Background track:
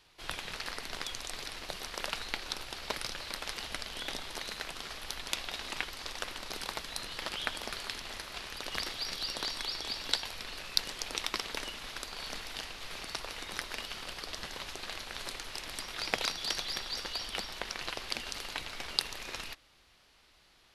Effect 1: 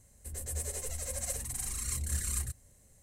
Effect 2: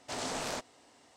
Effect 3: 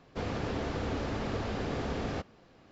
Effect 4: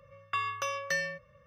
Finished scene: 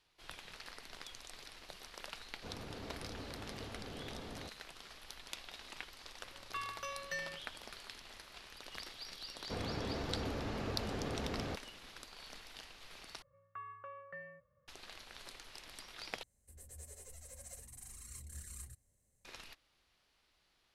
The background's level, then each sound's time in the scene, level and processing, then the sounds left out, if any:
background track −11.5 dB
0:02.27: mix in 3 −14 dB
0:06.21: mix in 4 −10 dB
0:09.34: mix in 3 −6 dB
0:13.22: overwrite with 4 −14.5 dB + low-pass filter 1,700 Hz 24 dB per octave
0:16.23: overwrite with 1 −15.5 dB
not used: 2

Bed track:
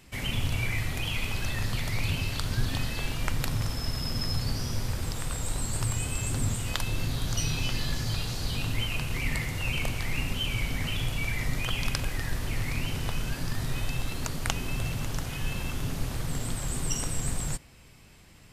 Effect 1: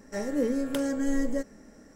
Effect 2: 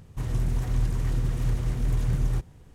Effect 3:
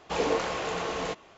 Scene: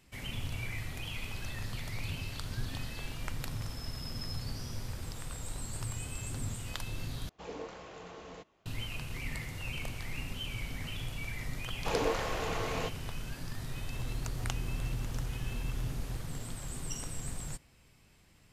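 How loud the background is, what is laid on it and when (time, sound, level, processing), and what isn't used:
bed track −9 dB
0:07.29: overwrite with 3 −18 dB + low-shelf EQ 290 Hz +7.5 dB
0:11.75: mix in 3 −4.5 dB
0:13.76: mix in 2 −1 dB + downward compressor 4 to 1, threshold −35 dBFS
not used: 1

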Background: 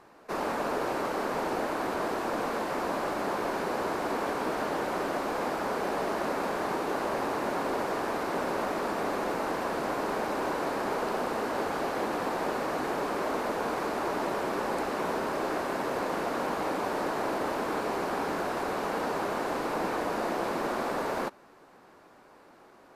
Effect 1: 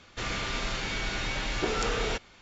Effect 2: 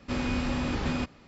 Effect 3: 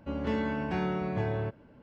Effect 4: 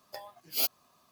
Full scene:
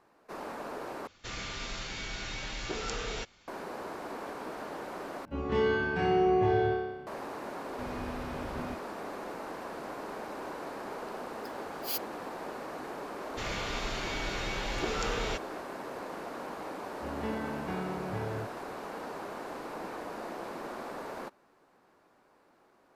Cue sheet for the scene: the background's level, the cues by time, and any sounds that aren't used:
background −9.5 dB
0:01.07: overwrite with 1 −7.5 dB + parametric band 5,800 Hz +4 dB 1.3 octaves
0:05.25: overwrite with 3 −1.5 dB + flutter between parallel walls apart 5.1 metres, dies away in 1.1 s
0:07.70: mix in 2 −10.5 dB + linear delta modulator 32 kbit/s, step −46.5 dBFS
0:11.31: mix in 4 −6.5 dB
0:13.20: mix in 1 −4 dB
0:16.96: mix in 3 −6 dB

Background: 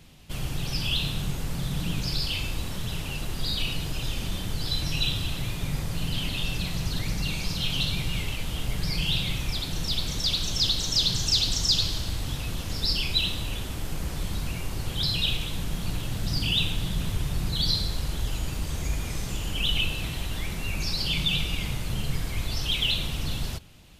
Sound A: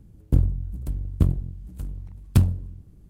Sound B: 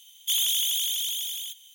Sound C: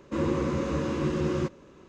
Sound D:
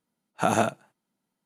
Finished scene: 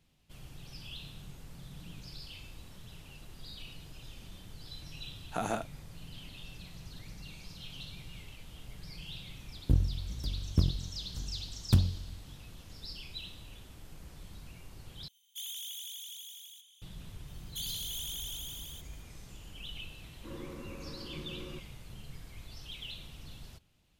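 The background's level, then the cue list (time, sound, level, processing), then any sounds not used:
background −18.5 dB
0:04.93: mix in D −11 dB
0:09.37: mix in A −7 dB
0:15.08: overwrite with B −17 dB + echo through a band-pass that steps 111 ms, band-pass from 420 Hz, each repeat 1.4 octaves, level −4.5 dB
0:17.28: mix in B −12.5 dB + brickwall limiter −17.5 dBFS
0:20.12: mix in C −18 dB

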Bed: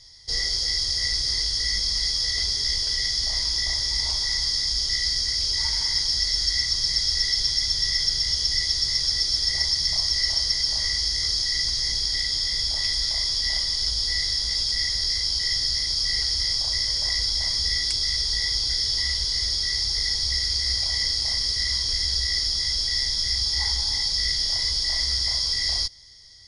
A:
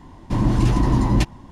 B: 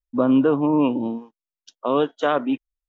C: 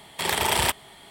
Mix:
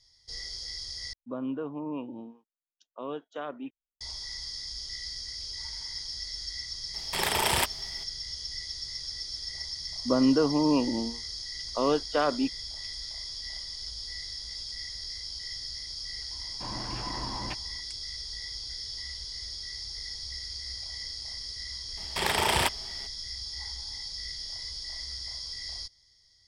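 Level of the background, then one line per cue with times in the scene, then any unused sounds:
bed −14 dB
0:01.13: overwrite with B −16.5 dB
0:06.94: mix in C −3.5 dB
0:09.92: mix in B −5.5 dB
0:16.30: mix in A −8.5 dB + three-way crossover with the lows and the highs turned down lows −15 dB, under 550 Hz, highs −17 dB, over 3,300 Hz
0:21.97: mix in C −2 dB + high-shelf EQ 9,700 Hz −9.5 dB

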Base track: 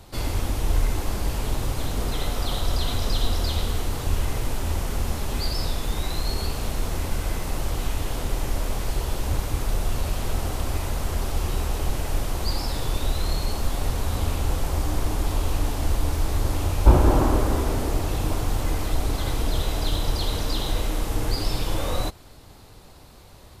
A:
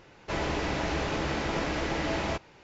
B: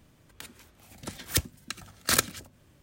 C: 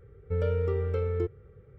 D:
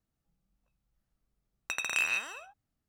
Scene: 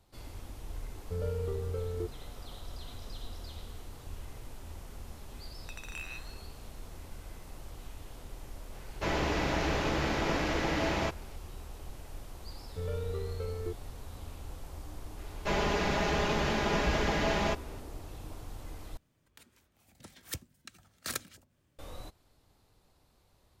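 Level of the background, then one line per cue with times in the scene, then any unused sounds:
base track −19.5 dB
0:00.80: mix in C −6.5 dB + parametric band 2,100 Hz −7 dB 1.1 octaves
0:03.99: mix in D −14 dB
0:08.73: mix in A −0.5 dB
0:12.46: mix in C −8.5 dB
0:15.17: mix in A −0.5 dB + comb filter 4.9 ms, depth 60%
0:18.97: overwrite with B −13 dB

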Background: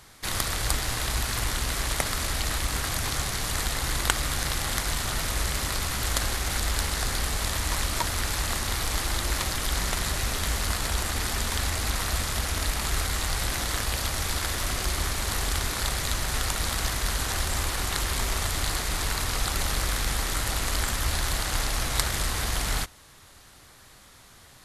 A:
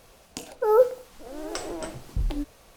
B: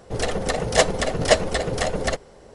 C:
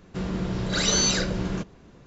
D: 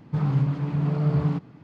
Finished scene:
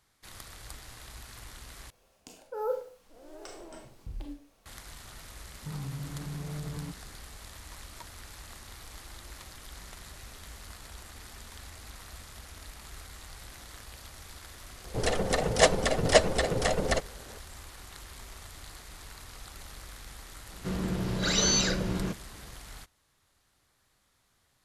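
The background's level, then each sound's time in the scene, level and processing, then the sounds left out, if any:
background −19 dB
0:01.90: overwrite with A −14 dB + four-comb reverb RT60 0.35 s, combs from 28 ms, DRR 3 dB
0:05.53: mix in D −11 dB + downward compressor, threshold −23 dBFS
0:14.84: mix in B −3.5 dB
0:20.50: mix in C −3 dB

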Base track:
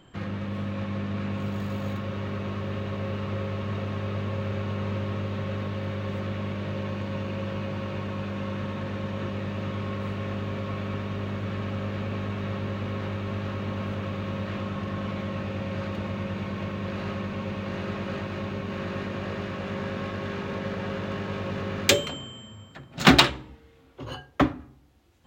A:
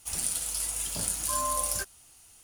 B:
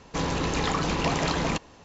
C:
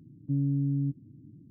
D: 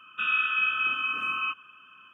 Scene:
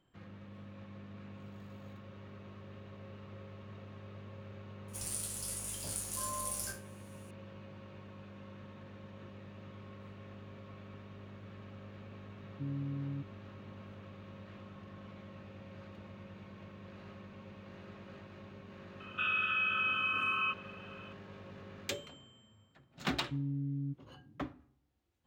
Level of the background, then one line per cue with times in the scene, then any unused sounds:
base track −19 dB
0:04.88: mix in A −10.5 dB + peak hold with a decay on every bin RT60 0.32 s
0:12.31: mix in C −11 dB
0:19.00: mix in D −0.5 dB + brickwall limiter −24.5 dBFS
0:23.02: mix in C −9 dB
not used: B

